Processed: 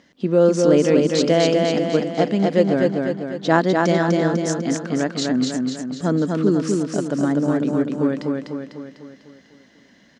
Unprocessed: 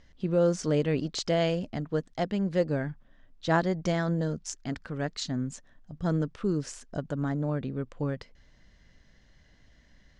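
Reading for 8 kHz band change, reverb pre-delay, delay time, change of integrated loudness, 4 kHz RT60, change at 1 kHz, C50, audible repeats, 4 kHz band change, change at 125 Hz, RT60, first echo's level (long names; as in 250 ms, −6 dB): +10.0 dB, no reverb audible, 249 ms, +10.5 dB, no reverb audible, +10.5 dB, no reverb audible, 6, +10.0 dB, +5.5 dB, no reverb audible, −3.0 dB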